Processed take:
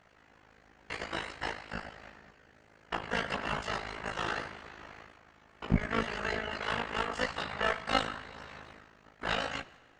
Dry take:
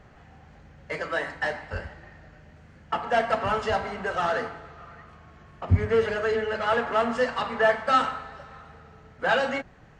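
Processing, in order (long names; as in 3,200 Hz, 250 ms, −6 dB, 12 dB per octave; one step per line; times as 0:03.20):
ceiling on every frequency bin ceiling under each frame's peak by 18 dB
noise gate −48 dBFS, range −7 dB
in parallel at +2.5 dB: downward compressor, threshold −38 dBFS, peak gain reduction 23 dB
on the sum: amplitude modulation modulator 53 Hz, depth 80%
tube saturation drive 9 dB, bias 0.7
multi-voice chorus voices 2, 0.88 Hz, delay 16 ms, depth 1.8 ms
on a send at −20.5 dB: convolution reverb RT60 1.5 s, pre-delay 20 ms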